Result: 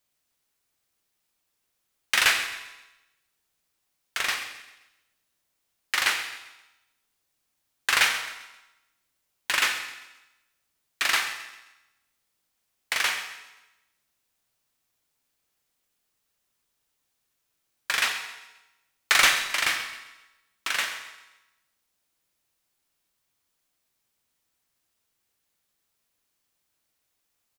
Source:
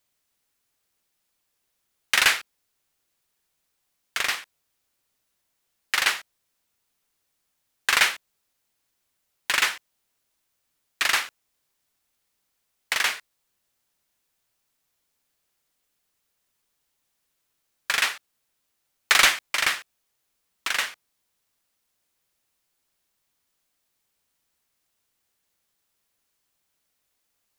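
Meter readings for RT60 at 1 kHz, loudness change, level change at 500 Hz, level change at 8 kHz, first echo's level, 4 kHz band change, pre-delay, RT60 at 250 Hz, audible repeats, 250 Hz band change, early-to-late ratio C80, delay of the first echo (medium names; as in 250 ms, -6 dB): 1.1 s, -2.0 dB, -1.5 dB, -1.0 dB, -15.0 dB, -1.0 dB, 16 ms, 1.0 s, 3, -1.0 dB, 9.0 dB, 132 ms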